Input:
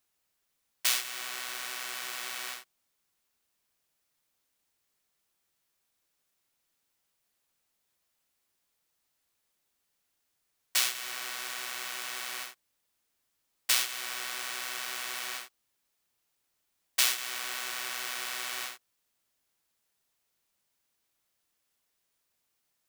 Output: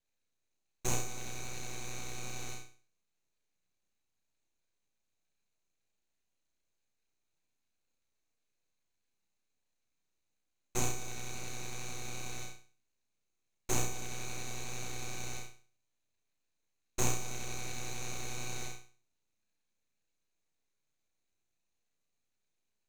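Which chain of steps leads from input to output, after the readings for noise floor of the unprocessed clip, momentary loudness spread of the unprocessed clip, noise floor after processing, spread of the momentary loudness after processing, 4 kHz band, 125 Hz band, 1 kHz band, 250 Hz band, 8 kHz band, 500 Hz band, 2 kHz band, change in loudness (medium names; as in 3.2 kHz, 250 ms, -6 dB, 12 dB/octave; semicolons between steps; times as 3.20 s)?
-79 dBFS, 12 LU, -82 dBFS, 11 LU, -13.0 dB, no reading, -3.5 dB, +12.5 dB, -4.5 dB, +6.0 dB, -10.0 dB, -7.5 dB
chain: two resonant band-passes 1.6 kHz, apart 2 oct; full-wave rectifier; flutter echo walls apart 5.7 m, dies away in 0.41 s; trim +6 dB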